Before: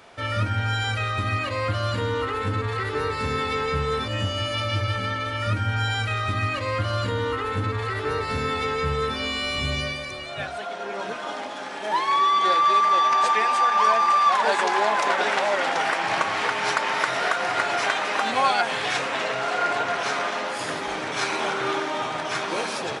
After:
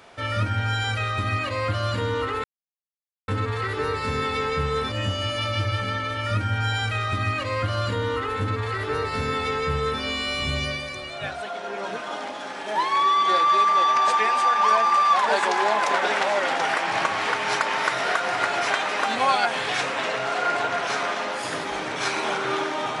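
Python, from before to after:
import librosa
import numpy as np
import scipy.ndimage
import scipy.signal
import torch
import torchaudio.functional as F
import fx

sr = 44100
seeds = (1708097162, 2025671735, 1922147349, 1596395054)

y = fx.edit(x, sr, fx.insert_silence(at_s=2.44, length_s=0.84), tone=tone)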